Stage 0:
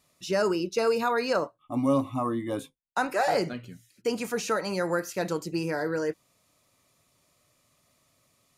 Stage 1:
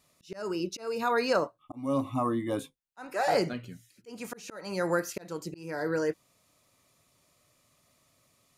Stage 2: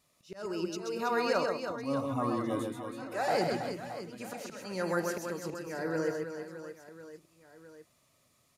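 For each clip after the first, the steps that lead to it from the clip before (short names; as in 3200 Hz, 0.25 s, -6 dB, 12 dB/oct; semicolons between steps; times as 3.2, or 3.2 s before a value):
auto swell 0.372 s
reverse bouncing-ball echo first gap 0.13 s, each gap 1.5×, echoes 5; gain -4 dB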